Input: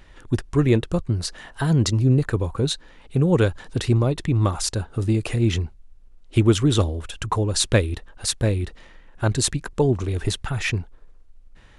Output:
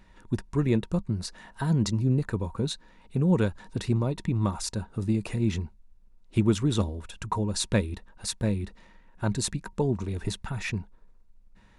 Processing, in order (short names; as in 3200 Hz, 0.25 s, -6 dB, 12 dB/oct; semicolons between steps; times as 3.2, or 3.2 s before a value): notch 3100 Hz, Q 12; small resonant body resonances 200/940 Hz, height 12 dB, ringing for 95 ms; gain -8 dB